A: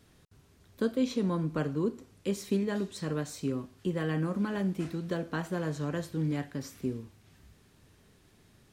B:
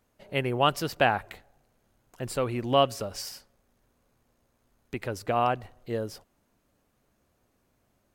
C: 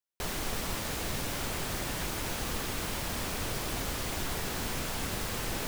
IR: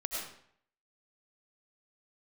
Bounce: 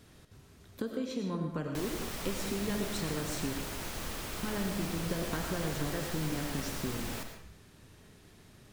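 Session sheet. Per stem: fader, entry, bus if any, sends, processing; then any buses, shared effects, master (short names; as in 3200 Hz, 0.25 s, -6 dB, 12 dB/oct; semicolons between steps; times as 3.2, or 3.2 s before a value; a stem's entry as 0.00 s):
+0.5 dB, 0.00 s, muted 3.53–4.43, bus A, send -4.5 dB, compressor 4:1, threshold -34 dBFS, peak gain reduction 9.5 dB
off
-9.5 dB, 1.55 s, no bus, send -4 dB, dry
bus A: 0.0 dB, compressor 2.5:1, threshold -41 dBFS, peak gain reduction 7.5 dB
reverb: on, RT60 0.65 s, pre-delay 60 ms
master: dry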